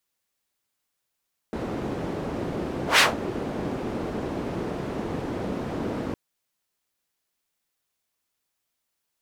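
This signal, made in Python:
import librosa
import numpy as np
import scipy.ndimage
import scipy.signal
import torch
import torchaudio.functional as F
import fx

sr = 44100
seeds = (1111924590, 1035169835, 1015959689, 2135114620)

y = fx.whoosh(sr, seeds[0], length_s=4.61, peak_s=1.46, rise_s=0.13, fall_s=0.17, ends_hz=310.0, peak_hz=2600.0, q=0.99, swell_db=14.5)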